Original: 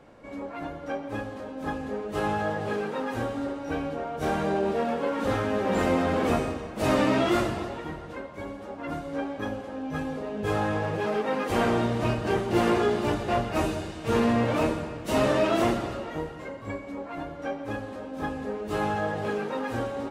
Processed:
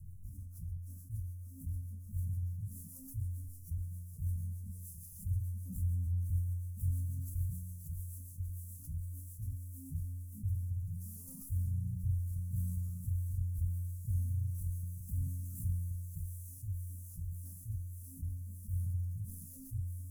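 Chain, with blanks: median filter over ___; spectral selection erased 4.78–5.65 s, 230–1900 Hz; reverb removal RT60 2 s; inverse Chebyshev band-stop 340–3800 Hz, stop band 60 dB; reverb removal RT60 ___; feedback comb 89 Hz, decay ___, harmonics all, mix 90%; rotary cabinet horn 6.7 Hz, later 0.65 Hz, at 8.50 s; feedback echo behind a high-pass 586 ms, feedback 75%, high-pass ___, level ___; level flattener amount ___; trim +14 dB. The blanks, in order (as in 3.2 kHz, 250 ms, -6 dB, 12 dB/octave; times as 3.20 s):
15 samples, 0.78 s, 0.88 s, 2.7 kHz, -7 dB, 50%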